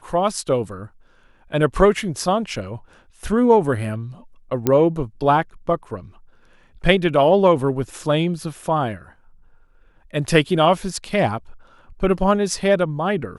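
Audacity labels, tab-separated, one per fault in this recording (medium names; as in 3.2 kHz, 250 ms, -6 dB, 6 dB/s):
4.670000	4.670000	pop -5 dBFS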